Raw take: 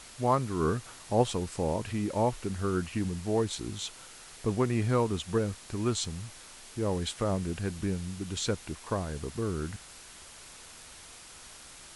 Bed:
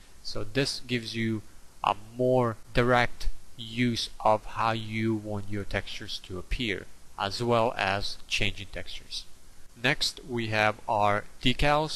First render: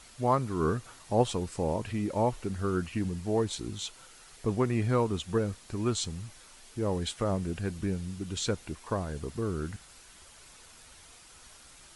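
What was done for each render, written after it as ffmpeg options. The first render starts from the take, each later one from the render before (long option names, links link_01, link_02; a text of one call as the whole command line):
ffmpeg -i in.wav -af "afftdn=noise_reduction=6:noise_floor=-50" out.wav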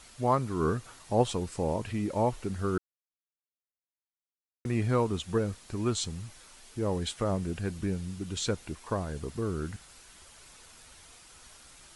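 ffmpeg -i in.wav -filter_complex "[0:a]asplit=3[link_01][link_02][link_03];[link_01]atrim=end=2.78,asetpts=PTS-STARTPTS,afade=type=out:start_time=2.776:duration=0.004:curve=hsin[link_04];[link_02]atrim=start=2.78:end=4.65,asetpts=PTS-STARTPTS,volume=0[link_05];[link_03]atrim=start=4.65,asetpts=PTS-STARTPTS,afade=type=in:duration=0.004:curve=hsin[link_06];[link_04][link_05][link_06]concat=n=3:v=0:a=1" out.wav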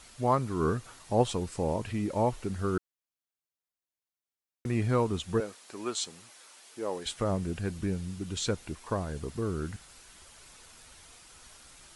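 ffmpeg -i in.wav -filter_complex "[0:a]asettb=1/sr,asplit=3[link_01][link_02][link_03];[link_01]atrim=end=5.404[link_04];[link_02]atrim=start=5.4:end=7.06,asetpts=PTS-STARTPTS,afade=type=in:duration=0.004:curve=qsin,afade=type=out:start_time=1.656:duration=0.004:curve=qsin,highpass=400[link_05];[link_03]atrim=start=7.056[link_06];[link_04][link_05]acrossfade=duration=0.004:curve1=hsin:curve2=qsin[link_07];[link_07][link_06]acrossfade=duration=0.004:curve1=qsin:curve2=hsin" out.wav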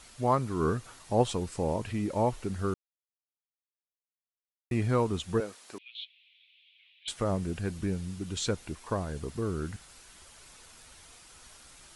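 ffmpeg -i in.wav -filter_complex "[0:a]asettb=1/sr,asplit=3[link_01][link_02][link_03];[link_01]atrim=end=5.784[link_04];[link_02]atrim=start=5.78:end=7.08,asetpts=PTS-STARTPTS,afade=type=in:duration=0.004:curve=qsin,afade=type=out:start_time=1.296:duration=0.004:curve=qsin,asuperpass=centerf=2900:order=8:qfactor=2[link_05];[link_03]atrim=start=7.076[link_06];[link_04][link_05]acrossfade=duration=0.004:curve1=hsin:curve2=qsin[link_07];[link_07][link_06]acrossfade=duration=0.004:curve1=qsin:curve2=hsin,asplit=3[link_08][link_09][link_10];[link_08]atrim=end=2.74,asetpts=PTS-STARTPTS,afade=type=out:start_time=2.736:duration=0.004:curve=hsin[link_11];[link_09]atrim=start=2.74:end=4.71,asetpts=PTS-STARTPTS,volume=0[link_12];[link_10]atrim=start=4.71,asetpts=PTS-STARTPTS,afade=type=in:duration=0.004:curve=hsin[link_13];[link_11][link_12][link_13]concat=n=3:v=0:a=1" out.wav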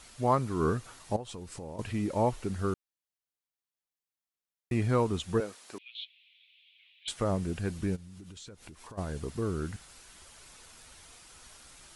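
ffmpeg -i in.wav -filter_complex "[0:a]asettb=1/sr,asplit=3[link_01][link_02][link_03];[link_01]atrim=end=1.164[link_04];[link_02]atrim=start=1.16:end=1.79,asetpts=PTS-STARTPTS,afade=type=in:duration=0.004:curve=qsin,afade=type=out:start_time=0.626:duration=0.004:curve=qsin,acompressor=threshold=-40dB:ratio=4:attack=3.2:release=140:knee=1:detection=peak[link_05];[link_03]atrim=start=1.786[link_06];[link_04][link_05]acrossfade=duration=0.004:curve1=hsin:curve2=qsin[link_07];[link_07][link_06]acrossfade=duration=0.004:curve1=qsin:curve2=hsin,asplit=3[link_08][link_09][link_10];[link_08]afade=type=out:start_time=7.95:duration=0.02[link_11];[link_09]acompressor=threshold=-44dB:ratio=12:attack=3.2:release=140:knee=1:detection=peak,afade=type=in:start_time=7.95:duration=0.02,afade=type=out:start_time=8.97:duration=0.02[link_12];[link_10]afade=type=in:start_time=8.97:duration=0.02[link_13];[link_11][link_12][link_13]amix=inputs=3:normalize=0" out.wav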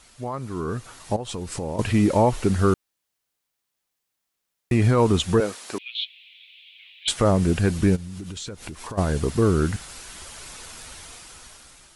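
ffmpeg -i in.wav -af "alimiter=limit=-22dB:level=0:latency=1:release=81,dynaudnorm=framelen=320:gausssize=7:maxgain=13dB" out.wav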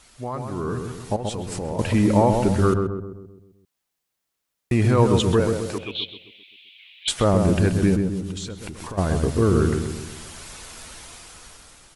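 ffmpeg -i in.wav -filter_complex "[0:a]asplit=2[link_01][link_02];[link_02]adelay=130,lowpass=frequency=1100:poles=1,volume=-4dB,asplit=2[link_03][link_04];[link_04]adelay=130,lowpass=frequency=1100:poles=1,volume=0.52,asplit=2[link_05][link_06];[link_06]adelay=130,lowpass=frequency=1100:poles=1,volume=0.52,asplit=2[link_07][link_08];[link_08]adelay=130,lowpass=frequency=1100:poles=1,volume=0.52,asplit=2[link_09][link_10];[link_10]adelay=130,lowpass=frequency=1100:poles=1,volume=0.52,asplit=2[link_11][link_12];[link_12]adelay=130,lowpass=frequency=1100:poles=1,volume=0.52,asplit=2[link_13][link_14];[link_14]adelay=130,lowpass=frequency=1100:poles=1,volume=0.52[link_15];[link_01][link_03][link_05][link_07][link_09][link_11][link_13][link_15]amix=inputs=8:normalize=0" out.wav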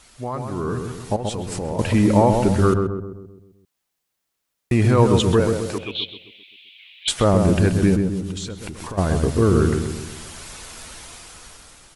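ffmpeg -i in.wav -af "volume=2dB" out.wav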